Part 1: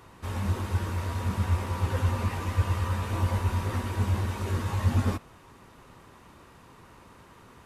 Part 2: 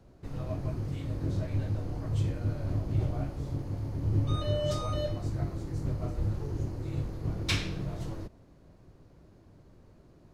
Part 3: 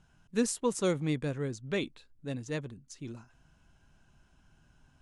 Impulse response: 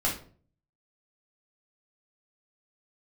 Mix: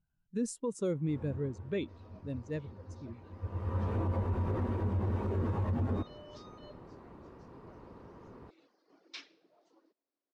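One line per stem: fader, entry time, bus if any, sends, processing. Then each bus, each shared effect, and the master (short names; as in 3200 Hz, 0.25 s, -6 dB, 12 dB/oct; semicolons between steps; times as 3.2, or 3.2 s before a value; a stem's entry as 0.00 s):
0.0 dB, 0.85 s, no send, EQ curve 110 Hz 0 dB, 430 Hz +5 dB, 9500 Hz -26 dB; auto duck -22 dB, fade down 1.80 s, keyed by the third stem
-17.5 dB, 1.65 s, no send, elliptic band-pass 280–5400 Hz, stop band 40 dB; tilt +2 dB/oct; reverb removal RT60 1.9 s
+2.0 dB, 0.00 s, no send, spectral expander 1.5:1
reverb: off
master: limiter -25 dBFS, peak gain reduction 11.5 dB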